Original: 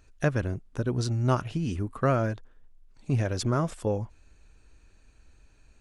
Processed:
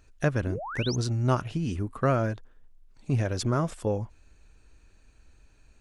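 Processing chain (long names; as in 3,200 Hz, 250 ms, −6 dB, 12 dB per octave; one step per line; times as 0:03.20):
sound drawn into the spectrogram rise, 0:00.46–0:00.96, 230–6,800 Hz −36 dBFS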